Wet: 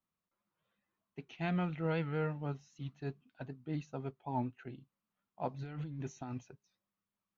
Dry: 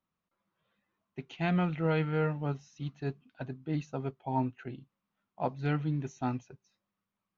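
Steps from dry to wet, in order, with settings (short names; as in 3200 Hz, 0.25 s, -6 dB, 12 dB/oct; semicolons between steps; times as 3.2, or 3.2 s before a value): 5.54–6.51 negative-ratio compressor -36 dBFS, ratio -1; record warp 78 rpm, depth 100 cents; gain -5.5 dB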